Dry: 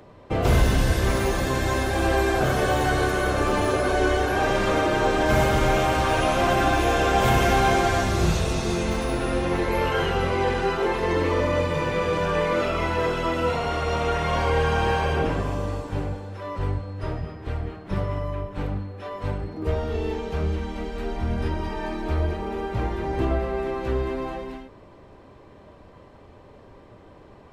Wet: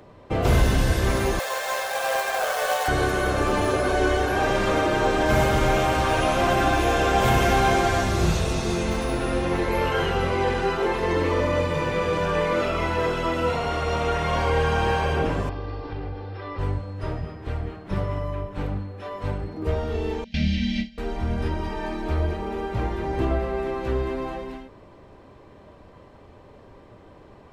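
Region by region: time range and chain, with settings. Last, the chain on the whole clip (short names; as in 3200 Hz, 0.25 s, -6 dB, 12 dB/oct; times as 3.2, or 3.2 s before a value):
1.39–2.88 steep high-pass 470 Hz 72 dB/oct + companded quantiser 4-bit
15.49–16.59 steep low-pass 5300 Hz 72 dB/oct + comb 2.5 ms, depth 54% + compressor 4:1, threshold -28 dBFS
20.24–20.98 gate with hold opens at -18 dBFS, closes at -31 dBFS + EQ curve 120 Hz 0 dB, 240 Hz +14 dB, 410 Hz -27 dB, 620 Hz -4 dB, 1100 Hz -27 dB, 1900 Hz +9 dB, 3200 Hz +14 dB, 5200 Hz +14 dB, 9200 Hz -10 dB, 13000 Hz -14 dB
whole clip: dry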